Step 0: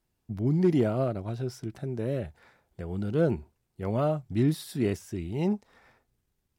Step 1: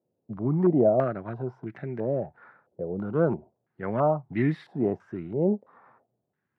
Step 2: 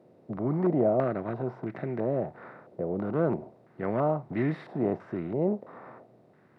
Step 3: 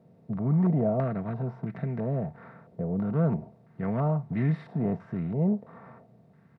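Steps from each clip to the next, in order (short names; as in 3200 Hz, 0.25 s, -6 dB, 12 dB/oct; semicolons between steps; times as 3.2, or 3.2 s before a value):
HPF 120 Hz 24 dB/oct; stepped low-pass 3 Hz 540–2000 Hz
per-bin compression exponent 0.6; gain -5.5 dB
resonant low shelf 210 Hz +10.5 dB, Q 1.5; comb 4.4 ms, depth 43%; gain -3.5 dB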